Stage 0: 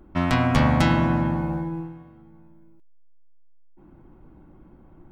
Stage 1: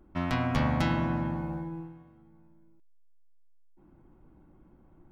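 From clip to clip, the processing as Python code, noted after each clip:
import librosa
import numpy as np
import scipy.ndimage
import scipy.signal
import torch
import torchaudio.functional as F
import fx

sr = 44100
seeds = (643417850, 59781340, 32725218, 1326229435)

y = fx.dynamic_eq(x, sr, hz=8200.0, q=2.7, threshold_db=-57.0, ratio=4.0, max_db=-6)
y = F.gain(torch.from_numpy(y), -8.0).numpy()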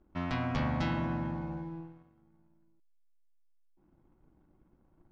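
y = fx.leveller(x, sr, passes=1)
y = scipy.signal.sosfilt(scipy.signal.butter(4, 6300.0, 'lowpass', fs=sr, output='sos'), y)
y = F.gain(torch.from_numpy(y), -7.5).numpy()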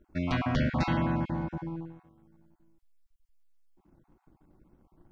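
y = fx.spec_dropout(x, sr, seeds[0], share_pct=22)
y = F.gain(torch.from_numpy(y), 5.0).numpy()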